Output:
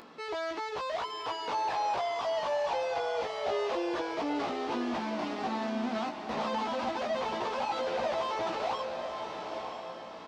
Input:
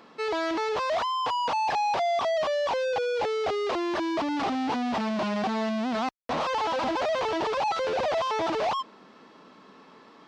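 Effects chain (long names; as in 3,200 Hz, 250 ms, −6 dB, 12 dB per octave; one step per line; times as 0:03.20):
upward compression, threshold −38 dBFS
double-tracking delay 17 ms −4 dB
feedback delay with all-pass diffusion 947 ms, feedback 41%, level −5 dB
level −8 dB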